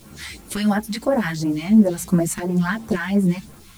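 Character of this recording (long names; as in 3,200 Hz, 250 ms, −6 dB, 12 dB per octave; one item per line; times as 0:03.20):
phaser sweep stages 2, 2.9 Hz, lowest notch 360–4,100 Hz
a quantiser's noise floor 8 bits, dither none
a shimmering, thickened sound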